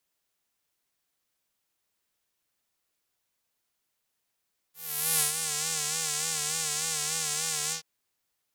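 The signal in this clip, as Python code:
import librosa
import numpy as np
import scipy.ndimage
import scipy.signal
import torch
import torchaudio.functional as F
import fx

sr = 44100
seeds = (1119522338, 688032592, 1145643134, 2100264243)

y = fx.sub_patch_vibrato(sr, seeds[0], note=51, wave='square', wave2='saw', interval_st=-12, detune_cents=16, level2_db=-9.0, sub_db=-15.0, noise_db=-18.0, kind='bandpass', cutoff_hz=5100.0, q=2.0, env_oct=1.5, env_decay_s=0.83, env_sustain_pct=40, attack_ms=462.0, decay_s=0.12, sustain_db=-8.0, release_s=0.11, note_s=2.97, lfo_hz=3.4, vibrato_cents=80)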